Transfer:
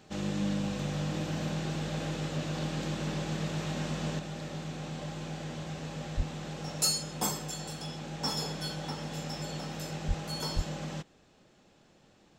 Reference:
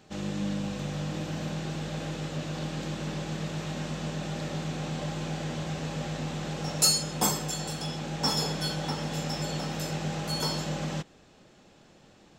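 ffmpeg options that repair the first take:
ffmpeg -i in.wav -filter_complex "[0:a]asplit=3[link_01][link_02][link_03];[link_01]afade=type=out:start_time=6.16:duration=0.02[link_04];[link_02]highpass=frequency=140:width=0.5412,highpass=frequency=140:width=1.3066,afade=type=in:start_time=6.16:duration=0.02,afade=type=out:start_time=6.28:duration=0.02[link_05];[link_03]afade=type=in:start_time=6.28:duration=0.02[link_06];[link_04][link_05][link_06]amix=inputs=3:normalize=0,asplit=3[link_07][link_08][link_09];[link_07]afade=type=out:start_time=10.07:duration=0.02[link_10];[link_08]highpass=frequency=140:width=0.5412,highpass=frequency=140:width=1.3066,afade=type=in:start_time=10.07:duration=0.02,afade=type=out:start_time=10.19:duration=0.02[link_11];[link_09]afade=type=in:start_time=10.19:duration=0.02[link_12];[link_10][link_11][link_12]amix=inputs=3:normalize=0,asplit=3[link_13][link_14][link_15];[link_13]afade=type=out:start_time=10.55:duration=0.02[link_16];[link_14]highpass=frequency=140:width=0.5412,highpass=frequency=140:width=1.3066,afade=type=in:start_time=10.55:duration=0.02,afade=type=out:start_time=10.67:duration=0.02[link_17];[link_15]afade=type=in:start_time=10.67:duration=0.02[link_18];[link_16][link_17][link_18]amix=inputs=3:normalize=0,asetnsamples=nb_out_samples=441:pad=0,asendcmd='4.19 volume volume 5.5dB',volume=0dB" out.wav

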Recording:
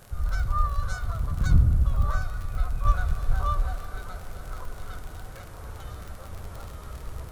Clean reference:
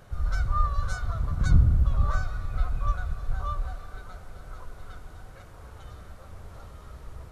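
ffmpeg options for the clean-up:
ffmpeg -i in.wav -filter_complex "[0:a]adeclick=threshold=4,asplit=3[link_01][link_02][link_03];[link_01]afade=type=out:start_time=5.66:duration=0.02[link_04];[link_02]highpass=frequency=140:width=0.5412,highpass=frequency=140:width=1.3066,afade=type=in:start_time=5.66:duration=0.02,afade=type=out:start_time=5.78:duration=0.02[link_05];[link_03]afade=type=in:start_time=5.78:duration=0.02[link_06];[link_04][link_05][link_06]amix=inputs=3:normalize=0,agate=range=-21dB:threshold=-32dB,asetnsamples=nb_out_samples=441:pad=0,asendcmd='2.85 volume volume -5dB',volume=0dB" out.wav

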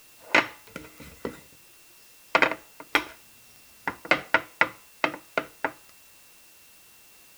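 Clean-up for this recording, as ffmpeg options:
ffmpeg -i in.wav -af "adeclick=threshold=4,bandreject=frequency=2700:width=30,afwtdn=0.002" out.wav

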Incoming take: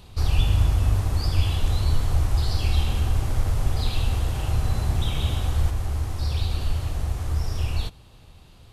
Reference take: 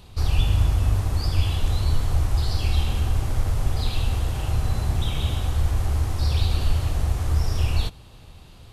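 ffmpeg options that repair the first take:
ffmpeg -i in.wav -af "asetnsamples=nb_out_samples=441:pad=0,asendcmd='5.7 volume volume 3.5dB',volume=0dB" out.wav

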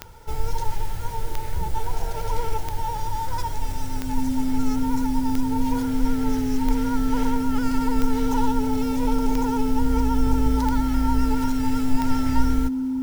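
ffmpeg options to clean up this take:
ffmpeg -i in.wav -af "adeclick=threshold=4,bandreject=frequency=260:width=30" out.wav

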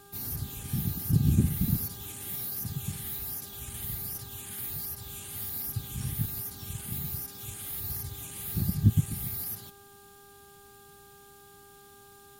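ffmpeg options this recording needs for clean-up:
ffmpeg -i in.wav -af "adeclick=threshold=4,bandreject=frequency=401:width_type=h:width=4,bandreject=frequency=802:width_type=h:width=4,bandreject=frequency=1203:width_type=h:width=4,bandreject=frequency=1604:width_type=h:width=4" out.wav

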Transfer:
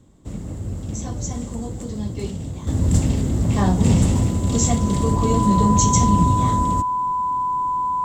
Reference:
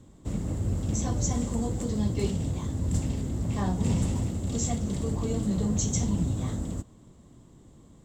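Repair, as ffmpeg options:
ffmpeg -i in.wav -af "bandreject=frequency=1000:width=30,asetnsamples=nb_out_samples=441:pad=0,asendcmd='2.67 volume volume -10dB',volume=0dB" out.wav

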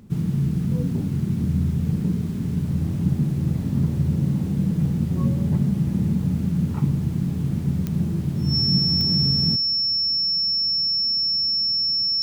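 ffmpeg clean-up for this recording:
ffmpeg -i in.wav -af "adeclick=threshold=4,bandreject=frequency=5400:width=30" out.wav

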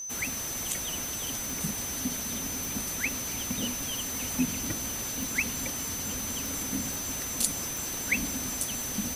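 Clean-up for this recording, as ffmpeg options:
ffmpeg -i in.wav -af "adeclick=threshold=4,bandreject=frequency=6100:width=30" out.wav

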